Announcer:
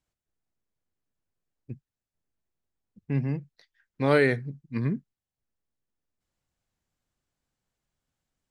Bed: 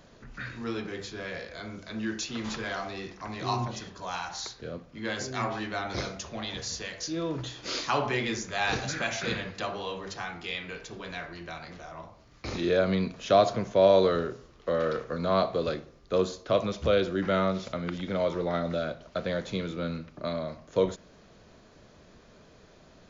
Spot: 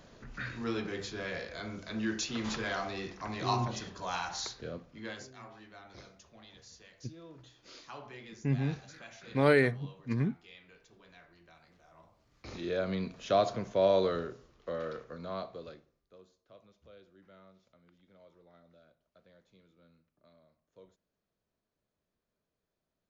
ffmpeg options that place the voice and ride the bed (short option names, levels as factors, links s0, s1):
-filter_complex "[0:a]adelay=5350,volume=0.708[s0];[1:a]volume=4.22,afade=t=out:st=4.52:d=0.83:silence=0.11885,afade=t=in:st=11.81:d=1.39:silence=0.211349,afade=t=out:st=14:d=2.17:silence=0.0501187[s1];[s0][s1]amix=inputs=2:normalize=0"